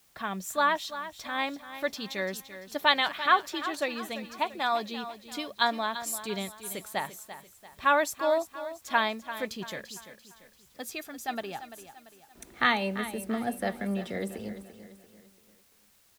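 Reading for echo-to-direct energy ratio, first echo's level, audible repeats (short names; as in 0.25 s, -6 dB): -11.5 dB, -12.5 dB, 3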